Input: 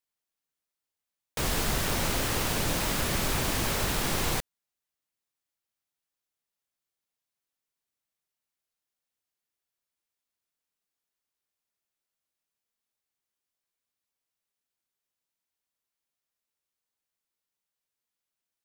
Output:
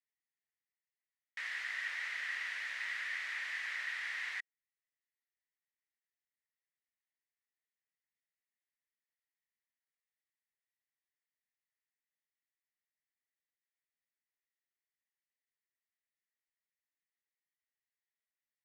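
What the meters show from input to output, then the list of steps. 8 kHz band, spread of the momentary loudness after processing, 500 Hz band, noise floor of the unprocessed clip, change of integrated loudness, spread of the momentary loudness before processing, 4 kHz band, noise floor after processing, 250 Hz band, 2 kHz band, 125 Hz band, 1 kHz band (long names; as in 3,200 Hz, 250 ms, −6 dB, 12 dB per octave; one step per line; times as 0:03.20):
−25.0 dB, 5 LU, below −30 dB, below −85 dBFS, −10.5 dB, 3 LU, −14.5 dB, below −85 dBFS, below −40 dB, −2.0 dB, below −40 dB, −19.5 dB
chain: four-pole ladder band-pass 2,000 Hz, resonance 80%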